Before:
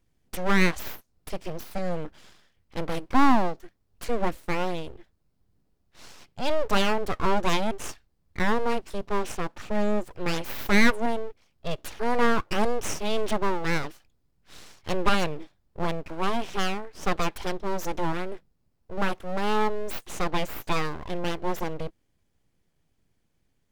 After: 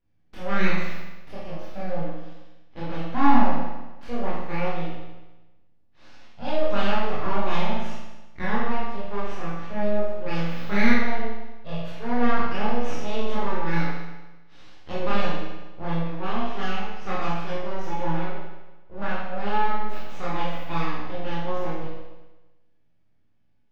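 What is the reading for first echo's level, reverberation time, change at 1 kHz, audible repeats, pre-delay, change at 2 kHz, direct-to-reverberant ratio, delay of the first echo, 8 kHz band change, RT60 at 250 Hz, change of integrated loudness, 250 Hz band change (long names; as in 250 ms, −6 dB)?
no echo audible, 1.1 s, +0.5 dB, no echo audible, 17 ms, −1.0 dB, −9.0 dB, no echo audible, −13.0 dB, 1.1 s, −0.5 dB, +1.0 dB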